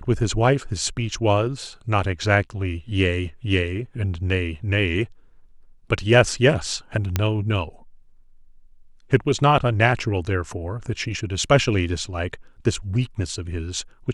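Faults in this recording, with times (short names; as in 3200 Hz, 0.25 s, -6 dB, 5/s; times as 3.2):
7.16 pop -6 dBFS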